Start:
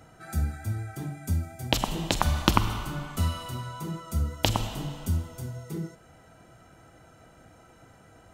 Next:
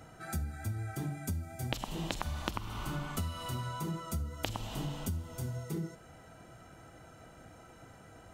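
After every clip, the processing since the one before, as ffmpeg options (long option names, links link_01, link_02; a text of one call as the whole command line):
ffmpeg -i in.wav -af "acompressor=threshold=-32dB:ratio=12" out.wav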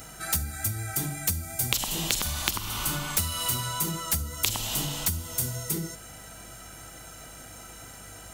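ffmpeg -i in.wav -af "crystalizer=i=7:c=0,aeval=exprs='val(0)+0.00178*(sin(2*PI*50*n/s)+sin(2*PI*2*50*n/s)/2+sin(2*PI*3*50*n/s)/3+sin(2*PI*4*50*n/s)/4+sin(2*PI*5*50*n/s)/5)':channel_layout=same,aeval=exprs='0.668*(cos(1*acos(clip(val(0)/0.668,-1,1)))-cos(1*PI/2))+0.237*(cos(7*acos(clip(val(0)/0.668,-1,1)))-cos(7*PI/2))':channel_layout=same" out.wav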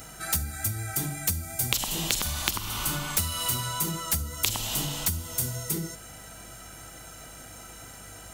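ffmpeg -i in.wav -af anull out.wav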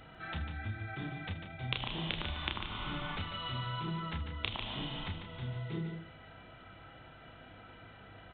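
ffmpeg -i in.wav -filter_complex "[0:a]asplit=2[link_01][link_02];[link_02]aecho=0:1:31|79:0.562|0.178[link_03];[link_01][link_03]amix=inputs=2:normalize=0,aresample=8000,aresample=44100,asplit=2[link_04][link_05];[link_05]aecho=0:1:147:0.422[link_06];[link_04][link_06]amix=inputs=2:normalize=0,volume=-7.5dB" out.wav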